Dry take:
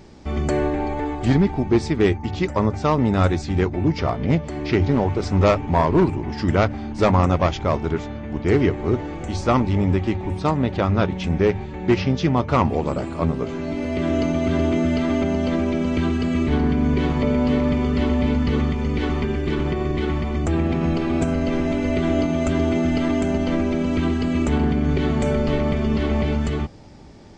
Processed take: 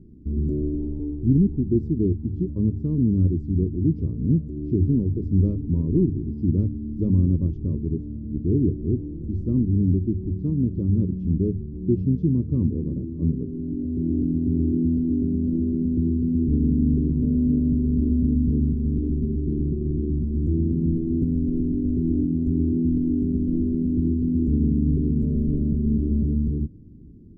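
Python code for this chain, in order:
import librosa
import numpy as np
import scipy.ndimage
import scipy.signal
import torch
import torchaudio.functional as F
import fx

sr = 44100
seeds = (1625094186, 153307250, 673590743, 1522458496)

y = scipy.signal.sosfilt(scipy.signal.cheby2(4, 40, 650.0, 'lowpass', fs=sr, output='sos'), x)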